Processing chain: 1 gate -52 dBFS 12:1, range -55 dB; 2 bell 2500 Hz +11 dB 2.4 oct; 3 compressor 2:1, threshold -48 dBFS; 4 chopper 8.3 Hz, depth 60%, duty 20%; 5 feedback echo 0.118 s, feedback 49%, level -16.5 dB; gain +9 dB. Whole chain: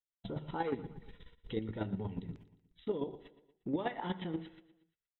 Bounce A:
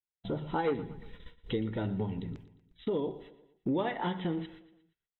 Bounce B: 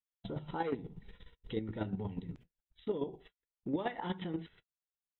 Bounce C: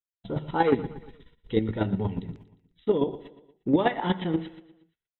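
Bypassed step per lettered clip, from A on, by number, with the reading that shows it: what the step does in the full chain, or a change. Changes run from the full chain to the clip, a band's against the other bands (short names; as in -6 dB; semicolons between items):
4, crest factor change -2.5 dB; 5, echo-to-direct -15.5 dB to none; 3, mean gain reduction 9.5 dB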